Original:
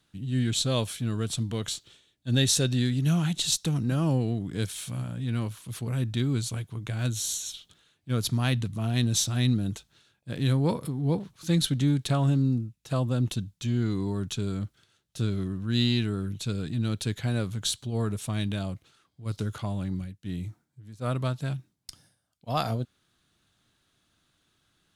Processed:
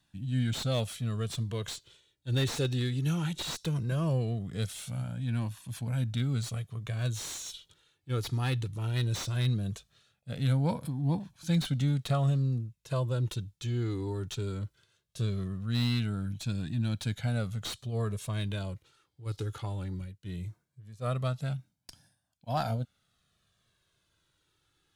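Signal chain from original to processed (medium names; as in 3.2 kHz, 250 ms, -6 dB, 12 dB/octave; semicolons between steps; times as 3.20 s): flange 0.18 Hz, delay 1.1 ms, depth 1.3 ms, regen -20%; slew-rate limiter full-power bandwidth 80 Hz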